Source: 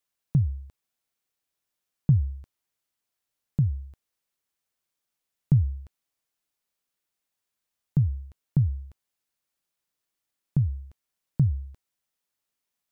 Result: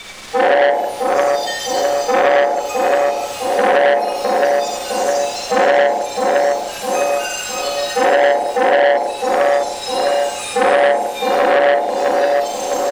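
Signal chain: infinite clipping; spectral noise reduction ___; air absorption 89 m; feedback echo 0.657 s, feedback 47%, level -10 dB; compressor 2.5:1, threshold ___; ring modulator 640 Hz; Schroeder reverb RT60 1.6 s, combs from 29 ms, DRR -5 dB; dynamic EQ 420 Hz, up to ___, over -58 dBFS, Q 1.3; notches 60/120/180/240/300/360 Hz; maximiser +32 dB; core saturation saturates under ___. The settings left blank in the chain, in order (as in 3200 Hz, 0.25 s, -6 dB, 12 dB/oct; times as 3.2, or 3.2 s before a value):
29 dB, -51 dBFS, +5 dB, 1200 Hz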